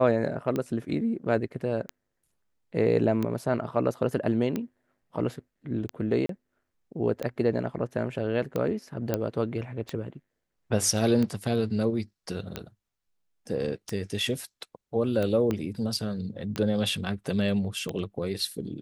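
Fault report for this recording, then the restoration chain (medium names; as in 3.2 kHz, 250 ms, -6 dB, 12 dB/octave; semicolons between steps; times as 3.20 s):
tick 45 rpm -17 dBFS
6.26–6.29 s: dropout 33 ms
9.14 s: pop -12 dBFS
15.51 s: pop -16 dBFS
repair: de-click; interpolate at 6.26 s, 33 ms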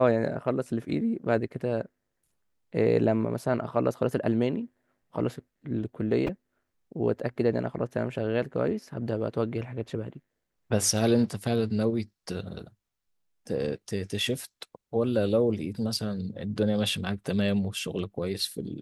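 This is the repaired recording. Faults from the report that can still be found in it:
15.51 s: pop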